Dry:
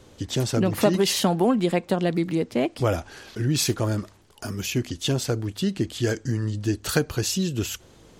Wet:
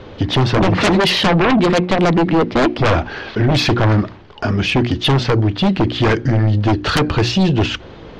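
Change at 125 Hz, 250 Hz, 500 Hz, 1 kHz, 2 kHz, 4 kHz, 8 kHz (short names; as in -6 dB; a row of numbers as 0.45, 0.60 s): +10.5, +9.0, +7.5, +13.0, +13.5, +10.0, -3.5 dB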